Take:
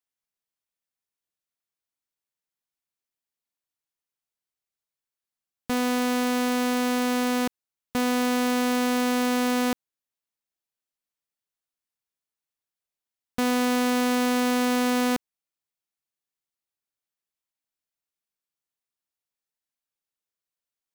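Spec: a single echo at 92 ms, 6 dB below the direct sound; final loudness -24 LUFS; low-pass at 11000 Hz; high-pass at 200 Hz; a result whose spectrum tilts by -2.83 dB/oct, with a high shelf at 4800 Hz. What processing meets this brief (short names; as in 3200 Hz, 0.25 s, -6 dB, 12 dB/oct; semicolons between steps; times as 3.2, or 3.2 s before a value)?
HPF 200 Hz; LPF 11000 Hz; high shelf 4800 Hz +5 dB; echo 92 ms -6 dB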